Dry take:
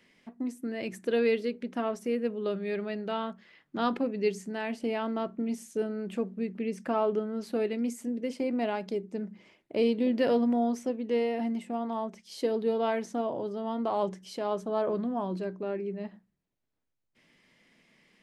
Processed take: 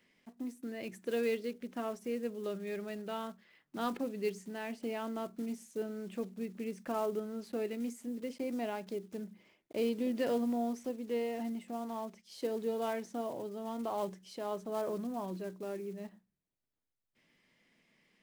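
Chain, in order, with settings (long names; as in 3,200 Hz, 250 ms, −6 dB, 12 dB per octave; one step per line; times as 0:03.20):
one scale factor per block 5 bits
level −7 dB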